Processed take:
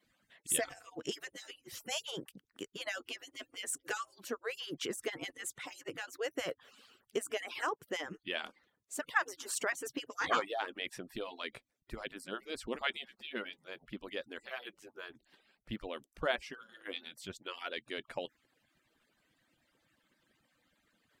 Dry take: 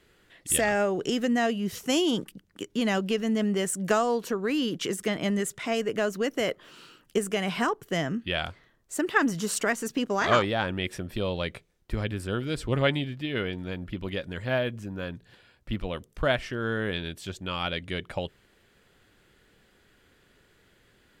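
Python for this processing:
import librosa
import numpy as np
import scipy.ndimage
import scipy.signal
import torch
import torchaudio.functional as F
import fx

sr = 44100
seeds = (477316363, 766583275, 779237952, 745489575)

y = fx.hpss_only(x, sr, part='percussive')
y = fx.low_shelf(y, sr, hz=95.0, db=-12.0)
y = y * 10.0 ** (-6.5 / 20.0)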